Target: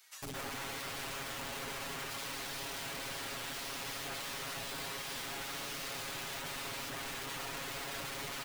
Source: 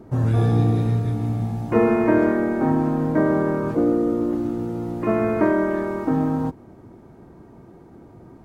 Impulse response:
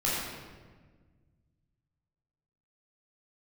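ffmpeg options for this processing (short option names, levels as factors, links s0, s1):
-filter_complex "[0:a]bandreject=f=60:t=h:w=6,bandreject=f=120:t=h:w=6,bandreject=f=180:t=h:w=6,bandreject=f=240:t=h:w=6,bandreject=f=300:t=h:w=6,bandreject=f=360:t=h:w=6,acrossover=split=290|840|2900[s0][s1][s2][s3];[s0]acompressor=threshold=0.0794:ratio=4[s4];[s1]acompressor=threshold=0.0794:ratio=4[s5];[s2]acompressor=threshold=0.00501:ratio=4[s6];[s3]acompressor=threshold=0.00126:ratio=4[s7];[s4][s5][s6][s7]amix=inputs=4:normalize=0,asoftclip=type=hard:threshold=0.119,equalizer=f=340:w=0.6:g=11,acrossover=split=220|2600[s8][s9][s10];[s8]adelay=220[s11];[s9]adelay=380[s12];[s11][s12][s10]amix=inputs=3:normalize=0,areverse,acompressor=threshold=0.0178:ratio=5,areverse,alimiter=level_in=3.98:limit=0.0631:level=0:latency=1:release=466,volume=0.251,aeval=exprs='(mod(316*val(0)+1,2)-1)/316':c=same,aecho=1:1:7.3:0.92,volume=3.35"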